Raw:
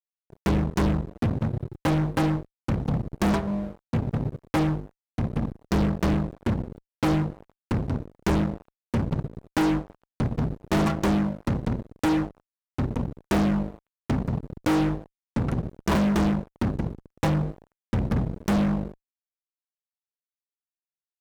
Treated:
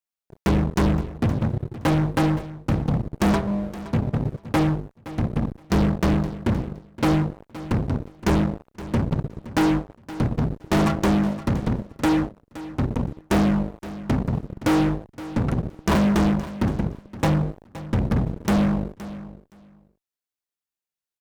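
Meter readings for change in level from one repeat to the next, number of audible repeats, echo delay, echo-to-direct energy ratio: −16.0 dB, 2, 519 ms, −15.5 dB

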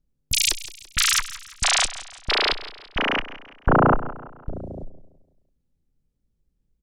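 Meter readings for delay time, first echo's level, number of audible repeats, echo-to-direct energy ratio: 168 ms, −16.5 dB, 3, −15.5 dB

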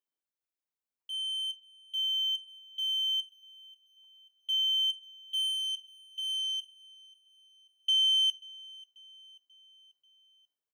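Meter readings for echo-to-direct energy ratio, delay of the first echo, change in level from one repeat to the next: −21.5 dB, 538 ms, −5.5 dB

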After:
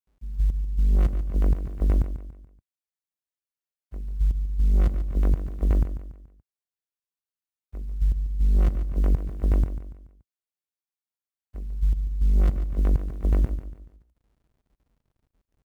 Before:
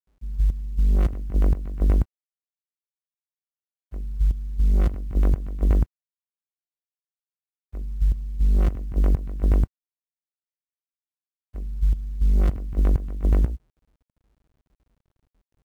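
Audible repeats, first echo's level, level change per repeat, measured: 3, −11.5 dB, −8.0 dB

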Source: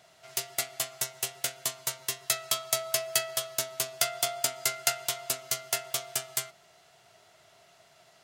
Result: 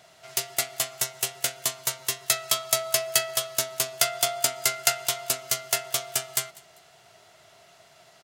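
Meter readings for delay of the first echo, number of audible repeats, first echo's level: 197 ms, 2, −24.0 dB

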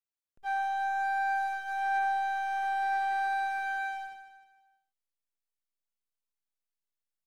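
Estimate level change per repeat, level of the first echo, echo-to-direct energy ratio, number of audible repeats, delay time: −6.5 dB, −10.5 dB, −9.5 dB, 4, 153 ms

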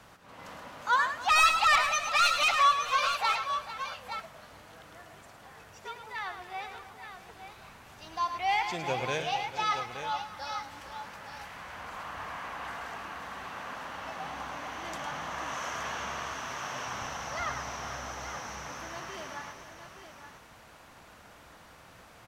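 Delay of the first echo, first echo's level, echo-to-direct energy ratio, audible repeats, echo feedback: 107 ms, −8.5 dB, −5.0 dB, 5, repeats not evenly spaced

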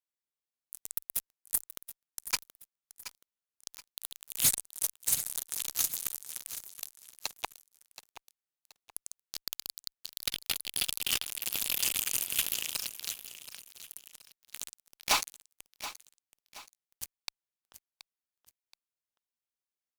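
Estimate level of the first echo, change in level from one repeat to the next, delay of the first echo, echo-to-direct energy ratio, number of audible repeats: −13.5 dB, −8.5 dB, 726 ms, −13.0 dB, 2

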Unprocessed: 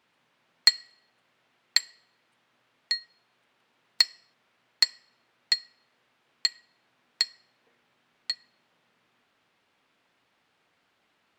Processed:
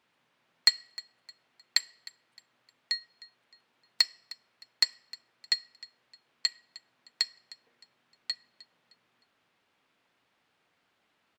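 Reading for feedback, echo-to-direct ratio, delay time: 34%, −19.5 dB, 308 ms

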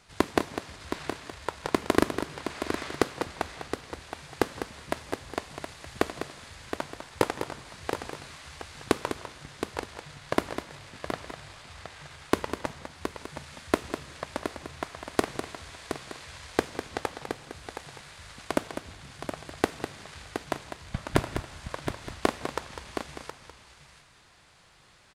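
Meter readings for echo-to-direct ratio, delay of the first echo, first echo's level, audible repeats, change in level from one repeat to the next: −5.5 dB, 201 ms, −9.5 dB, 3, repeats not evenly spaced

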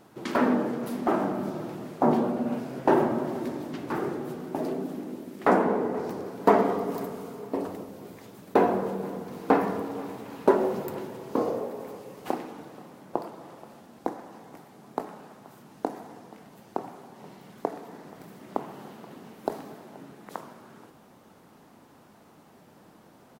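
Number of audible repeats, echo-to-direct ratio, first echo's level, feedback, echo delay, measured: 2, −20.5 dB, −21.0 dB, 27%, 479 ms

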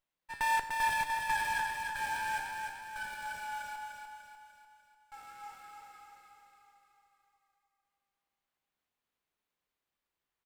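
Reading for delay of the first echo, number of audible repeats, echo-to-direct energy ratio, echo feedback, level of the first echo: 297 ms, 6, −3.0 dB, 50%, −4.5 dB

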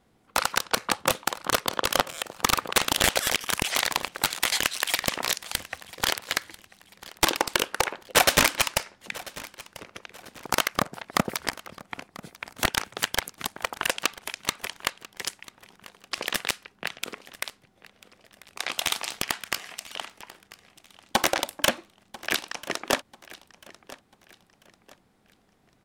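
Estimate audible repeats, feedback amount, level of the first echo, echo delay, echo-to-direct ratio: 2, 35%, −19.5 dB, 992 ms, −19.0 dB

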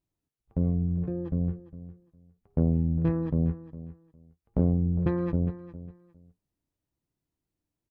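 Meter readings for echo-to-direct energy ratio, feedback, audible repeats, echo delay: −15.5 dB, 18%, 2, 407 ms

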